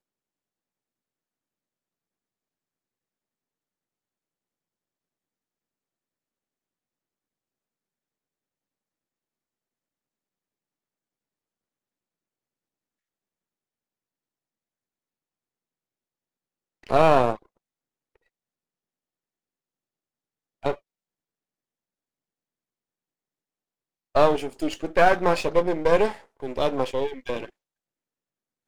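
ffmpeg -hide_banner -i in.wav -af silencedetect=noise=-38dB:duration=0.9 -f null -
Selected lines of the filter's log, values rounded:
silence_start: 0.00
silence_end: 16.84 | silence_duration: 16.84
silence_start: 17.36
silence_end: 20.63 | silence_duration: 3.27
silence_start: 20.75
silence_end: 24.15 | silence_duration: 3.40
silence_start: 27.49
silence_end: 28.67 | silence_duration: 1.19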